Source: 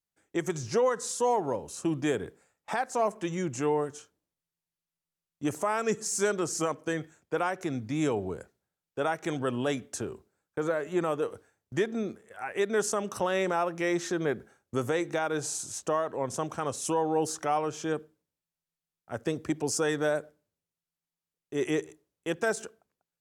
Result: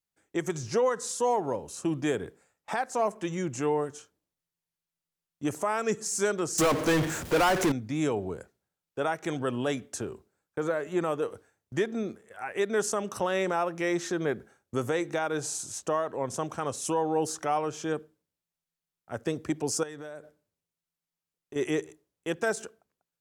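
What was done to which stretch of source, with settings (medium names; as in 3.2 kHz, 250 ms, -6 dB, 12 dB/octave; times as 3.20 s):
6.58–7.72 s: power-law waveshaper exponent 0.35
19.83–21.56 s: compression 5:1, threshold -39 dBFS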